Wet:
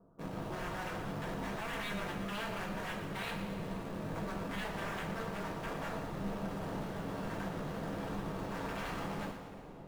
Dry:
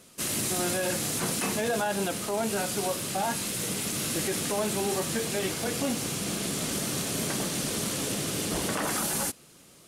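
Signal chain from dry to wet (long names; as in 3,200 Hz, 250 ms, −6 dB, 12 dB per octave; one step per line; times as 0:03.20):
Butterworth low-pass 1,200 Hz 48 dB per octave
in parallel at −11.5 dB: bit reduction 6 bits
on the sum: wave folding −30.5 dBFS
amplitude modulation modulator 220 Hz, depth 70%
on a send: echo with a time of its own for lows and highs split 810 Hz, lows 765 ms, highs 117 ms, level −11 dB
on the sum: coupled-rooms reverb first 0.29 s, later 2.7 s, from −16 dB, DRR −1.5 dB
level −4.5 dB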